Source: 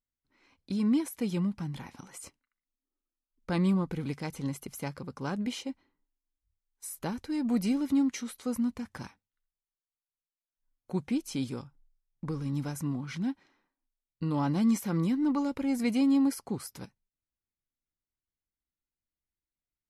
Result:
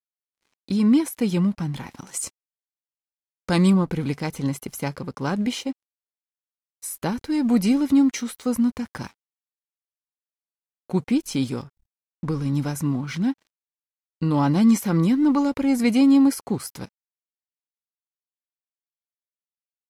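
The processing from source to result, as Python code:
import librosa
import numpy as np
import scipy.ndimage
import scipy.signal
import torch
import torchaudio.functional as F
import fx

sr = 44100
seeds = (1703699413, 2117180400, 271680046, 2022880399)

y = np.sign(x) * np.maximum(np.abs(x) - 10.0 ** (-60.0 / 20.0), 0.0)
y = fx.peak_eq(y, sr, hz=7700.0, db=10.0, octaves=1.6, at=(2.07, 3.7))
y = F.gain(torch.from_numpy(y), 9.0).numpy()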